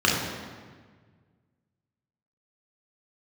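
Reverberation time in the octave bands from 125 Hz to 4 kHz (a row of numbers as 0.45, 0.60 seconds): 2.4, 1.9, 1.6, 1.5, 1.4, 1.2 seconds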